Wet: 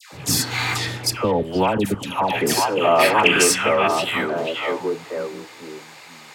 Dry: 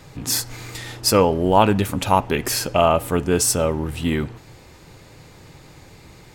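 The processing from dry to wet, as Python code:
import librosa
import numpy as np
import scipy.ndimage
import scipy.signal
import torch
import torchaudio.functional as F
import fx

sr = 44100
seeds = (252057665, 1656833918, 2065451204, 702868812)

p1 = fx.filter_sweep_highpass(x, sr, from_hz=94.0, to_hz=860.0, start_s=1.08, end_s=4.66, q=0.83)
p2 = p1 + fx.echo_stepped(p1, sr, ms=483, hz=2600.0, octaves=-1.4, feedback_pct=70, wet_db=-2.5, dry=0)
p3 = fx.level_steps(p2, sr, step_db=19, at=(0.85, 2.23))
p4 = fx.high_shelf(p3, sr, hz=12000.0, db=-6.0)
p5 = fx.over_compress(p4, sr, threshold_db=-28.0, ratio=-1.0)
p6 = p4 + F.gain(torch.from_numpy(p5), -1.0).numpy()
p7 = fx.spec_box(p6, sr, start_s=0.43, length_s=0.29, low_hz=710.0, high_hz=4600.0, gain_db=10)
p8 = fx.dispersion(p7, sr, late='lows', ms=126.0, hz=1100.0)
p9 = fx.peak_eq(p8, sr, hz=2100.0, db=13.5, octaves=1.3, at=(2.99, 3.88))
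y = F.gain(torch.from_numpy(p9), -1.0).numpy()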